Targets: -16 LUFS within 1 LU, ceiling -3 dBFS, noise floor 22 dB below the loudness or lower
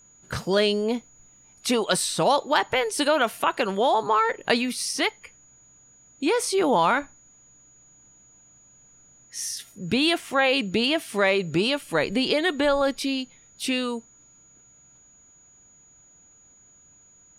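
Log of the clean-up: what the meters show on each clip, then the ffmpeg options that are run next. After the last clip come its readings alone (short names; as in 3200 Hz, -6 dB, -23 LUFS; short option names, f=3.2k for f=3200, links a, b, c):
steady tone 6800 Hz; tone level -53 dBFS; loudness -23.5 LUFS; peak -7.0 dBFS; loudness target -16.0 LUFS
-> -af "bandreject=f=6.8k:w=30"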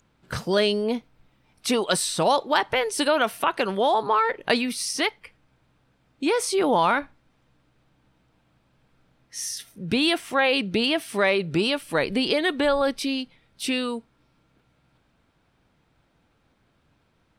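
steady tone none; loudness -23.5 LUFS; peak -7.0 dBFS; loudness target -16.0 LUFS
-> -af "volume=7.5dB,alimiter=limit=-3dB:level=0:latency=1"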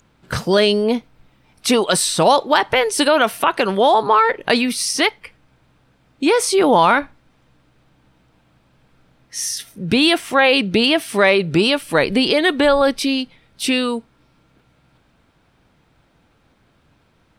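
loudness -16.5 LUFS; peak -3.0 dBFS; noise floor -59 dBFS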